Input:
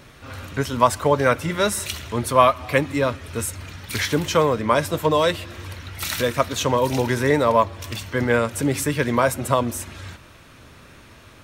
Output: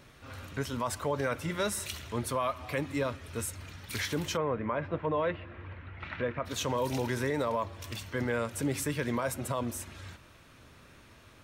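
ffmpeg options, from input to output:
-filter_complex "[0:a]asplit=3[s0][s1][s2];[s0]afade=t=out:st=4.36:d=0.02[s3];[s1]lowpass=f=2400:w=0.5412,lowpass=f=2400:w=1.3066,afade=t=in:st=4.36:d=0.02,afade=t=out:st=6.45:d=0.02[s4];[s2]afade=t=in:st=6.45:d=0.02[s5];[s3][s4][s5]amix=inputs=3:normalize=0,alimiter=limit=0.237:level=0:latency=1:release=38,volume=0.355"

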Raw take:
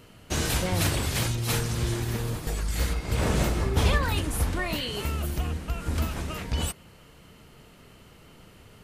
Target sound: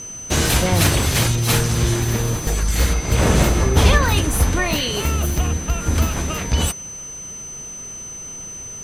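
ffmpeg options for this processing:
-filter_complex "[0:a]aeval=exprs='val(0)+0.01*sin(2*PI*6100*n/s)':c=same,asplit=2[s0][s1];[s1]asetrate=58866,aresample=44100,atempo=0.749154,volume=0.141[s2];[s0][s2]amix=inputs=2:normalize=0,volume=2.82"

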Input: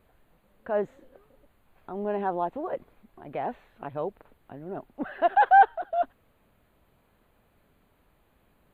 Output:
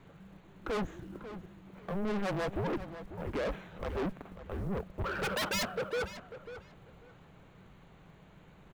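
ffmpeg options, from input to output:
-filter_complex "[0:a]afreqshift=-200,aresample=16000,aeval=exprs='0.0631*(abs(mod(val(0)/0.0631+3,4)-2)-1)':c=same,aresample=44100,acrusher=bits=7:mode=log:mix=0:aa=0.000001,asoftclip=type=tanh:threshold=0.0106,asplit=2[s0][s1];[s1]adelay=544,lowpass=f=3300:p=1,volume=0.251,asplit=2[s2][s3];[s3]adelay=544,lowpass=f=3300:p=1,volume=0.21,asplit=2[s4][s5];[s5]adelay=544,lowpass=f=3300:p=1,volume=0.21[s6];[s0][s2][s4][s6]amix=inputs=4:normalize=0,volume=2.66"

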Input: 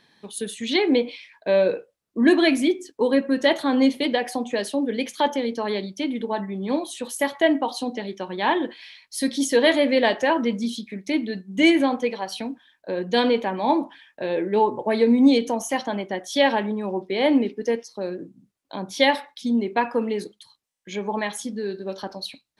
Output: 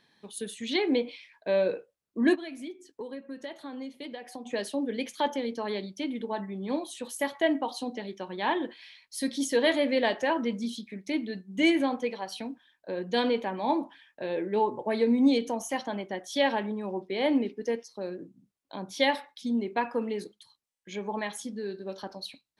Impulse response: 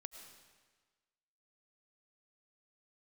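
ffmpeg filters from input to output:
-filter_complex "[0:a]asplit=3[s0][s1][s2];[s0]afade=t=out:st=2.34:d=0.02[s3];[s1]acompressor=threshold=0.0282:ratio=6,afade=t=in:st=2.34:d=0.02,afade=t=out:st=4.45:d=0.02[s4];[s2]afade=t=in:st=4.45:d=0.02[s5];[s3][s4][s5]amix=inputs=3:normalize=0,volume=0.473"

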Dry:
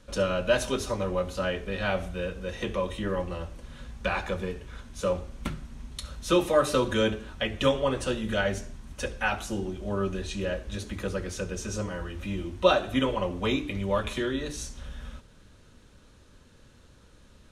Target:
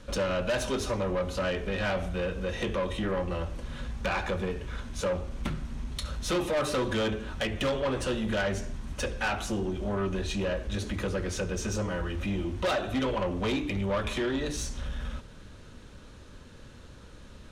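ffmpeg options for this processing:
-filter_complex "[0:a]highshelf=f=7200:g=-7,asplit=2[s0][s1];[s1]acompressor=threshold=0.0178:ratio=6,volume=1.19[s2];[s0][s2]amix=inputs=2:normalize=0,asoftclip=type=tanh:threshold=0.0631"

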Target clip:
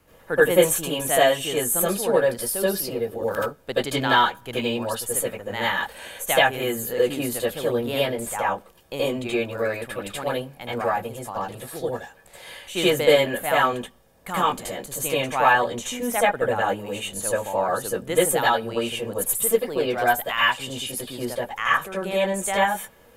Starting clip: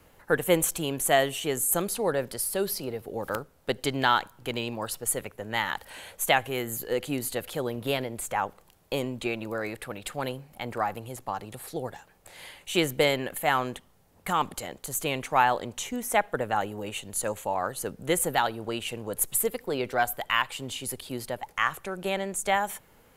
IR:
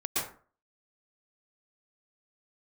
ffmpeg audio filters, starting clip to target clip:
-filter_complex "[1:a]atrim=start_sample=2205,afade=t=out:st=0.21:d=0.01,atrim=end_sample=9702,asetrate=66150,aresample=44100[s0];[0:a][s0]afir=irnorm=-1:irlink=0,volume=1.26"

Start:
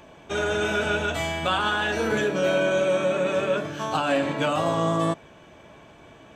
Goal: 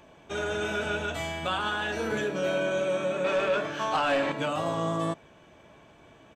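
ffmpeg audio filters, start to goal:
-filter_complex "[0:a]aresample=32000,aresample=44100,asettb=1/sr,asplit=3[s0][s1][s2];[s0]atrim=end=3.244[s3];[s1]atrim=start=3.24:end=4.32,asetpts=PTS-STARTPTS,afade=t=in:d=0.004:c=qsin,afade=t=out:st=1.076:d=0.004:c=qsin,asplit=2[s4][s5];[s5]highpass=f=720:p=1,volume=5.62,asoftclip=type=tanh:threshold=0.282[s6];[s4][s6]amix=inputs=2:normalize=0,lowpass=f=3100:p=1,volume=0.501[s7];[s2]atrim=start=4.316[s8];[s3][s7]acrossfade=d=0.004:c1=hsin:c2=qsin[s9];[s9][s8]acrossfade=d=0.004:c1=qsin:c2=hsin,volume=0.531"

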